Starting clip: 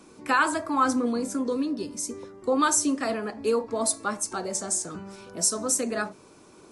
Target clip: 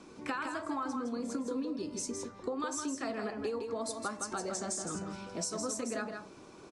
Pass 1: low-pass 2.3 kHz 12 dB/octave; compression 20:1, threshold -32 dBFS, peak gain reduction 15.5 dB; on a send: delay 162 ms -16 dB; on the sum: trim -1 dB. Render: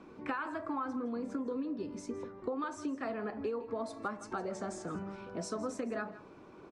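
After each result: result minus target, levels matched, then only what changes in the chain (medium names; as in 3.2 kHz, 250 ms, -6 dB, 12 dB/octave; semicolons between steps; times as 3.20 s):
8 kHz band -12.0 dB; echo-to-direct -10 dB
change: low-pass 6.3 kHz 12 dB/octave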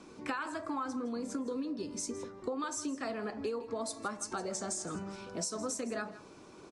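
echo-to-direct -10 dB
change: delay 162 ms -6 dB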